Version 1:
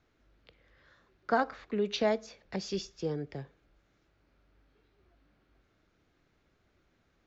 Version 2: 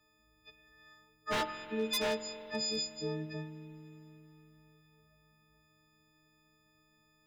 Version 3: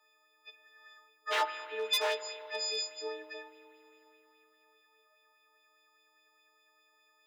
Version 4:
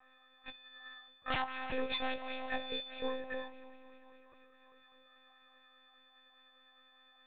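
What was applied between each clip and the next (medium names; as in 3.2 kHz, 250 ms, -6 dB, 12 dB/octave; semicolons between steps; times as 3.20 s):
partials quantised in pitch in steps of 6 st; wavefolder -22 dBFS; spring tank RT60 3.9 s, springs 45 ms, chirp 35 ms, DRR 10.5 dB; trim -4.5 dB
steep high-pass 400 Hz 36 dB/octave; sweeping bell 4.9 Hz 900–3400 Hz +8 dB
compression 10:1, threshold -37 dBFS, peak gain reduction 12 dB; monotone LPC vocoder at 8 kHz 260 Hz; trim +5.5 dB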